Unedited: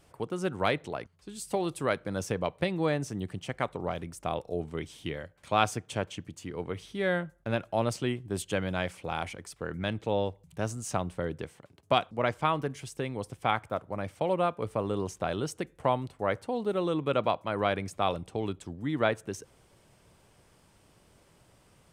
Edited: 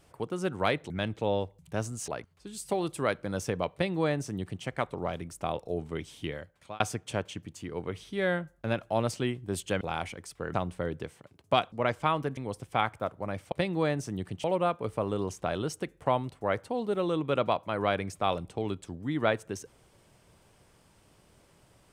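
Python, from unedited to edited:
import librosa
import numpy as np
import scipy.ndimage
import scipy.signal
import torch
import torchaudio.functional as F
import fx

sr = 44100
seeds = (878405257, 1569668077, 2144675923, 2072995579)

y = fx.edit(x, sr, fx.duplicate(start_s=2.55, length_s=0.92, to_s=14.22),
    fx.fade_out_span(start_s=5.07, length_s=0.55, curve='qsin'),
    fx.cut(start_s=8.63, length_s=0.39),
    fx.move(start_s=9.75, length_s=1.18, to_s=0.9),
    fx.cut(start_s=12.76, length_s=0.31), tone=tone)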